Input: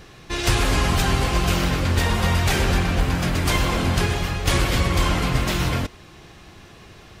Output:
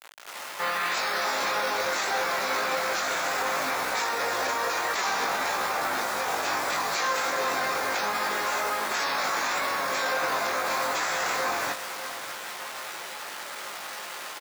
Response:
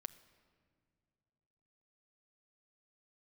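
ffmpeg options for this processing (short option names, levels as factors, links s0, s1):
-filter_complex "[0:a]equalizer=f=6000:t=o:w=0.33:g=-9.5,acompressor=threshold=0.0501:ratio=2,highshelf=f=10000:g=4,dynaudnorm=f=100:g=3:m=2.99,asetrate=22050,aresample=44100,asplit=2[s0][s1];[s1]adelay=596,lowpass=f=4700:p=1,volume=0.188,asplit=2[s2][s3];[s3]adelay=596,lowpass=f=4700:p=1,volume=0.41,asplit=2[s4][s5];[s5]adelay=596,lowpass=f=4700:p=1,volume=0.41,asplit=2[s6][s7];[s7]adelay=596,lowpass=f=4700:p=1,volume=0.41[s8];[s0][s2][s4][s6][s8]amix=inputs=5:normalize=0,acrusher=bits=5:mix=0:aa=0.000001,highpass=700,alimiter=limit=0.1:level=0:latency=1:release=15,asplit=2[s9][s10];[s10]adelay=19,volume=0.562[s11];[s9][s11]amix=inputs=2:normalize=0"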